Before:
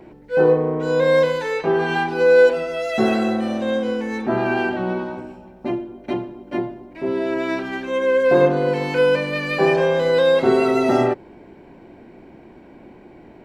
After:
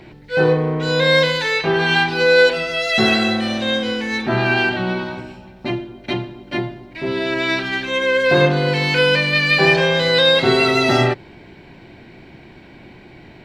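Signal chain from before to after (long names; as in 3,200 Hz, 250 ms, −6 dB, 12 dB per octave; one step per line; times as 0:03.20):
graphic EQ with 10 bands 125 Hz +6 dB, 250 Hz −5 dB, 500 Hz −5 dB, 1,000 Hz −3 dB, 2,000 Hz +4 dB, 4,000 Hz +11 dB
level +4.5 dB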